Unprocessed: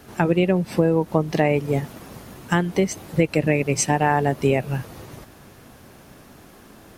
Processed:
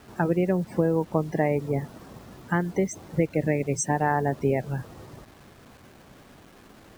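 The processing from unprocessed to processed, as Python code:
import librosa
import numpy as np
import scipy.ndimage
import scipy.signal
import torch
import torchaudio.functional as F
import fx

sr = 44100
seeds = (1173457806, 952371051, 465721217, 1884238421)

y = fx.spec_topn(x, sr, count=64)
y = fx.band_shelf(y, sr, hz=3400.0, db=-12.5, octaves=1.1)
y = fx.quant_dither(y, sr, seeds[0], bits=8, dither='none')
y = F.gain(torch.from_numpy(y), -4.5).numpy()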